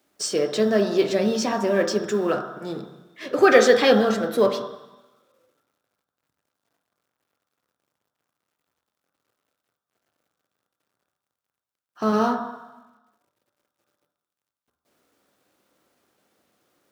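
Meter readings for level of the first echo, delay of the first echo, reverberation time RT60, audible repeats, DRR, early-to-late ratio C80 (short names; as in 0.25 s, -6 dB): none, none, 1.1 s, none, 3.0 dB, 9.0 dB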